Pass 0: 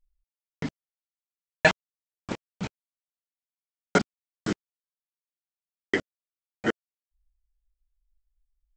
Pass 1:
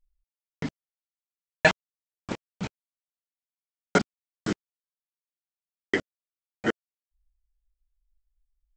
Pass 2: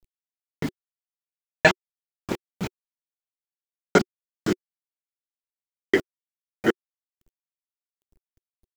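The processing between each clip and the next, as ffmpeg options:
-af anull
-af "acrusher=bits=8:dc=4:mix=0:aa=0.000001,equalizer=f=370:w=4:g=7,volume=2.5dB"

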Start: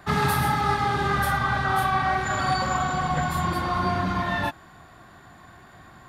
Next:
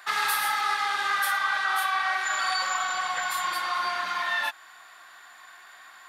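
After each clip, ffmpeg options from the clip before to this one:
-filter_complex "[0:a]highpass=1.4k,asplit=2[a][b];[b]alimiter=level_in=2dB:limit=-24dB:level=0:latency=1:release=226,volume=-2dB,volume=-0.5dB[c];[a][c]amix=inputs=2:normalize=0"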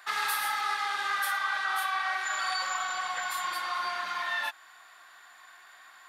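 -af "lowshelf=f=150:g=-6.5,volume=-4dB"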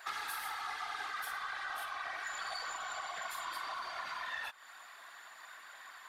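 -af "aeval=exprs='(tanh(15.8*val(0)+0.05)-tanh(0.05))/15.8':c=same,acompressor=threshold=-40dB:ratio=5,afftfilt=real='hypot(re,im)*cos(2*PI*random(0))':imag='hypot(re,im)*sin(2*PI*random(1))':win_size=512:overlap=0.75,volume=6.5dB"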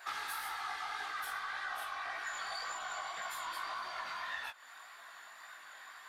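-af "flanger=delay=16:depth=5.4:speed=1.8,volume=3dB"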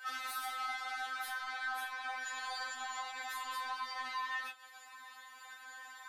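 -af "afftfilt=real='re*3.46*eq(mod(b,12),0)':imag='im*3.46*eq(mod(b,12),0)':win_size=2048:overlap=0.75,volume=2.5dB"

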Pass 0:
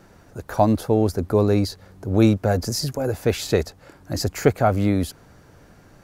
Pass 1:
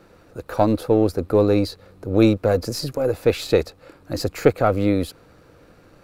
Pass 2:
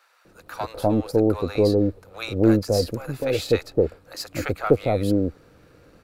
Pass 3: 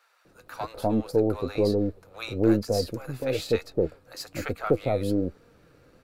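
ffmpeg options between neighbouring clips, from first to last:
-af "aeval=exprs='if(lt(val(0),0),0.708*val(0),val(0))':c=same,equalizer=f=315:t=o:w=0.33:g=6,equalizer=f=500:t=o:w=0.33:g=10,equalizer=f=1.25k:t=o:w=0.33:g=6,equalizer=f=2.5k:t=o:w=0.33:g=6,equalizer=f=4k:t=o:w=0.33:g=6,equalizer=f=6.3k:t=o:w=0.33:g=-4,volume=-2dB"
-filter_complex "[0:a]acrossover=split=850[a][b];[a]adelay=250[c];[c][b]amix=inputs=2:normalize=0,volume=-1.5dB"
-af "flanger=delay=4.2:depth=3.9:regen=67:speed=1.1:shape=sinusoidal"

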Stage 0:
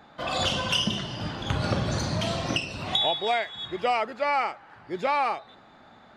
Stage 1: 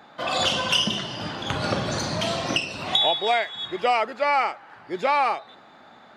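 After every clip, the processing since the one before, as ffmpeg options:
-af "highpass=f=250:p=1,volume=4dB"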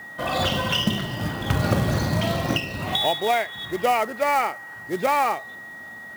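-af "aemphasis=mode=reproduction:type=bsi,aeval=exprs='val(0)+0.0141*sin(2*PI*1900*n/s)':c=same,acrusher=bits=4:mode=log:mix=0:aa=0.000001"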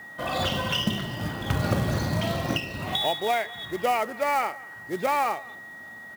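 -filter_complex "[0:a]asplit=2[a][b];[b]adelay=204.1,volume=-22dB,highshelf=f=4k:g=-4.59[c];[a][c]amix=inputs=2:normalize=0,volume=-3.5dB"

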